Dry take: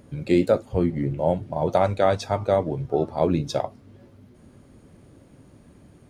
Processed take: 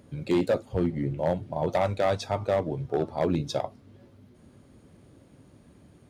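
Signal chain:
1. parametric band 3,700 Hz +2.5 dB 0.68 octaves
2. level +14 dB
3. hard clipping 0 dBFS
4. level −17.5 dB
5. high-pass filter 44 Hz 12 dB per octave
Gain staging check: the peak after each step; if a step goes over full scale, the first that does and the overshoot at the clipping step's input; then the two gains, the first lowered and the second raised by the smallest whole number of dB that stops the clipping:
−6.5, +7.5, 0.0, −17.5, −15.5 dBFS
step 2, 7.5 dB
step 2 +6 dB, step 4 −9.5 dB

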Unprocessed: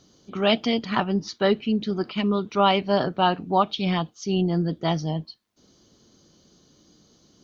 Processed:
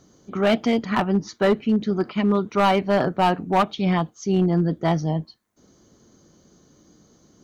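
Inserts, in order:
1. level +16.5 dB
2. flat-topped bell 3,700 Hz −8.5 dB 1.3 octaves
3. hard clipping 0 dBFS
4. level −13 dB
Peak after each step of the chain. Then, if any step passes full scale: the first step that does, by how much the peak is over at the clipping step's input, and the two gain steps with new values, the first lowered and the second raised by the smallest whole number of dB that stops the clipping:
+9.5, +9.5, 0.0, −13.0 dBFS
step 1, 9.5 dB
step 1 +6.5 dB, step 4 −3 dB

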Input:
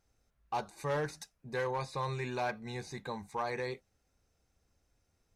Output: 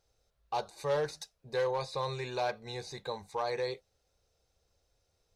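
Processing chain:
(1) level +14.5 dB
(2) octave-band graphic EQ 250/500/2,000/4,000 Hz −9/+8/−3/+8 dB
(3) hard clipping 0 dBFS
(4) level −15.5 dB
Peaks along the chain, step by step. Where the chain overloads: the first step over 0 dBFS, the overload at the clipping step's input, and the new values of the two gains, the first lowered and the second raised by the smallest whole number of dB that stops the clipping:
−11.0, −6.0, −6.0, −21.5 dBFS
no step passes full scale

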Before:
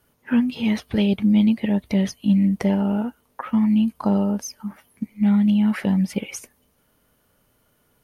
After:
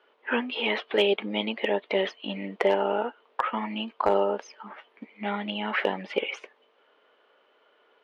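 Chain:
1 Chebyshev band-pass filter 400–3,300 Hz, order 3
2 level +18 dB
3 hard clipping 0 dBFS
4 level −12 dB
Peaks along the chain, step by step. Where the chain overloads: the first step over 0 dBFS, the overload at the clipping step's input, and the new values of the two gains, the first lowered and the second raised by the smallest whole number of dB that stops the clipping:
−13.5, +4.5, 0.0, −12.0 dBFS
step 2, 4.5 dB
step 2 +13 dB, step 4 −7 dB

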